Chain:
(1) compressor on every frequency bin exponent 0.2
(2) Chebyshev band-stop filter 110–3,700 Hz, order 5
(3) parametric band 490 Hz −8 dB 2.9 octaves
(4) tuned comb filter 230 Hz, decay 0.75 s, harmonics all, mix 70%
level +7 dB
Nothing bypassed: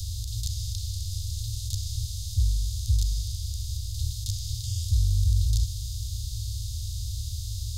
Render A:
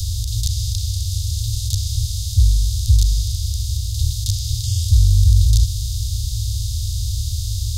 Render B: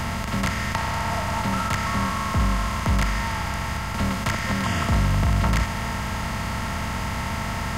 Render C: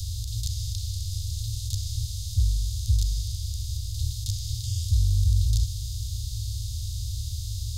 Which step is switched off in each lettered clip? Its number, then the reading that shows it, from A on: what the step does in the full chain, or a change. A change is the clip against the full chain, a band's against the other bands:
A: 4, change in integrated loudness +10.0 LU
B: 2, change in momentary loudness spread −3 LU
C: 3, change in integrated loudness +1.0 LU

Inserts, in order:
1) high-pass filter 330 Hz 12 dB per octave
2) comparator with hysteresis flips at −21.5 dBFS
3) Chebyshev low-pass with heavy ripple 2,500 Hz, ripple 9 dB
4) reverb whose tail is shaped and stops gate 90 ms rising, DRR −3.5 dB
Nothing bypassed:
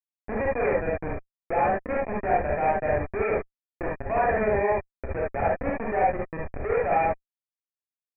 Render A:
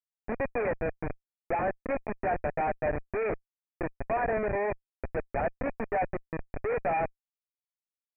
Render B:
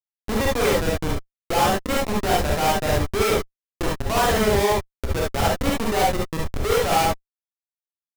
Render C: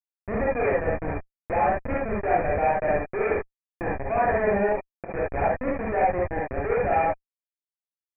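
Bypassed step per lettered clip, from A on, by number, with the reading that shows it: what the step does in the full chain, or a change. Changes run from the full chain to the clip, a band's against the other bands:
4, change in momentary loudness spread −1 LU
3, 125 Hz band +5.0 dB
1, change in momentary loudness spread −2 LU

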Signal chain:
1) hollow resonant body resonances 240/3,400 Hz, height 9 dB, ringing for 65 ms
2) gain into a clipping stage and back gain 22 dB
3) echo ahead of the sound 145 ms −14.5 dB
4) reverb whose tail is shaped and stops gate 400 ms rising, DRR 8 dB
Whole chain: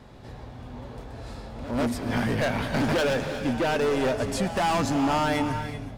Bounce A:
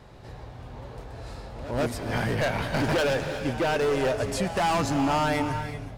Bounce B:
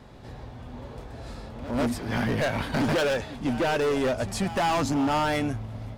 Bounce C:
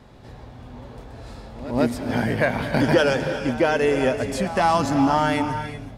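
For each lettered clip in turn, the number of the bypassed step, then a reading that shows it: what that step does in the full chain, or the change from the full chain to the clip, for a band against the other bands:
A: 1, 250 Hz band −2.5 dB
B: 4, change in crest factor −5.0 dB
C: 2, distortion level −7 dB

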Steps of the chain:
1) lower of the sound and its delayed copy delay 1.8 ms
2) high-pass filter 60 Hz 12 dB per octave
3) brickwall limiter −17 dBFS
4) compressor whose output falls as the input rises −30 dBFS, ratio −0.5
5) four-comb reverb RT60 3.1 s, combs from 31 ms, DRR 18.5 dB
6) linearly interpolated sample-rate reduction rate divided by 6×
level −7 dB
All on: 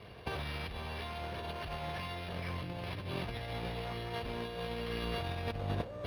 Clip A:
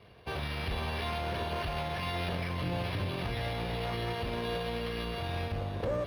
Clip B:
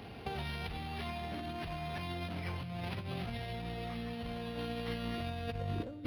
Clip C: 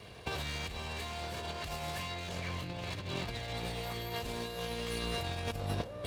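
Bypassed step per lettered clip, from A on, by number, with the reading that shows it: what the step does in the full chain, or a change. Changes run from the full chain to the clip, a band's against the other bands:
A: 4, change in crest factor −6.5 dB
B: 1, 250 Hz band +4.5 dB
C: 6, 8 kHz band +12.0 dB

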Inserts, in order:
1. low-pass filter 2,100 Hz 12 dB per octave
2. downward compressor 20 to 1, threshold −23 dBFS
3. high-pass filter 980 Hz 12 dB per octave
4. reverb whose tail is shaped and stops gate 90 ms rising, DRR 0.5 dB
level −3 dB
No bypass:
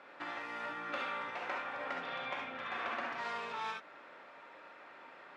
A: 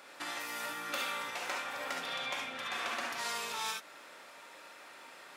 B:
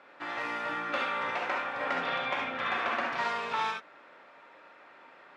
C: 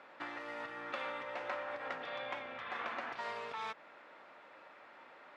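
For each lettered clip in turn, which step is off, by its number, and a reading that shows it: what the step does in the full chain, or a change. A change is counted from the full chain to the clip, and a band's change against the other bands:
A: 1, 4 kHz band +9.5 dB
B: 2, average gain reduction 5.0 dB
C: 4, 500 Hz band +4.0 dB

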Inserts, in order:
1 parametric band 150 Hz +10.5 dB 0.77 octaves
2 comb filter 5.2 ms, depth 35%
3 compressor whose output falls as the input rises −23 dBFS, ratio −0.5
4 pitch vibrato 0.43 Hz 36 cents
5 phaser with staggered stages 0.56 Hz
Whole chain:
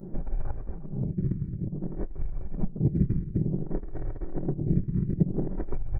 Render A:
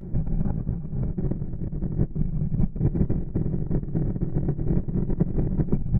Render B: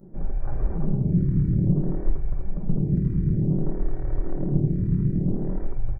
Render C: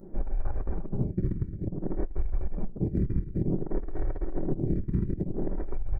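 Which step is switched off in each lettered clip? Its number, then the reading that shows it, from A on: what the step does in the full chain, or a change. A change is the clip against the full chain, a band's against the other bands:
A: 5, change in momentary loudness spread −6 LU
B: 3, change in crest factor −5.0 dB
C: 1, 125 Hz band −5.0 dB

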